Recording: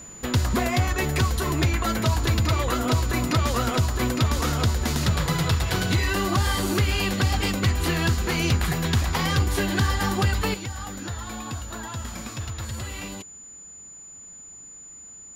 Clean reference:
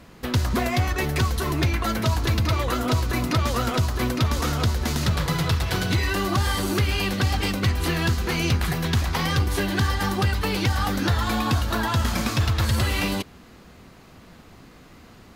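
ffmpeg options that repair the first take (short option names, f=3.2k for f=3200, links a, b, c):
-af "bandreject=f=7k:w=30,asetnsamples=n=441:p=0,asendcmd='10.54 volume volume 11dB',volume=0dB"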